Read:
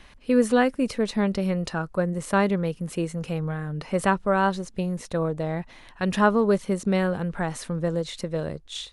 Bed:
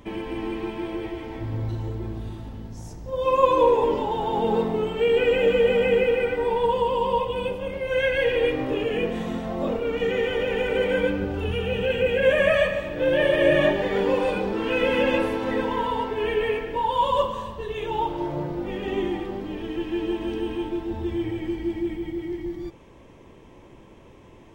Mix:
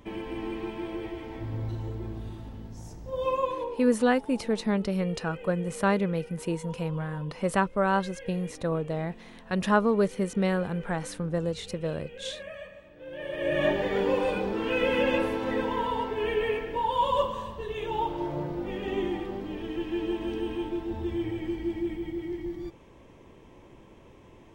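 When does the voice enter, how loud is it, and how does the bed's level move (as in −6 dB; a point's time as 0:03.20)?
3.50 s, −3.0 dB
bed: 0:03.25 −4.5 dB
0:03.85 −22 dB
0:13.04 −22 dB
0:13.71 −3.5 dB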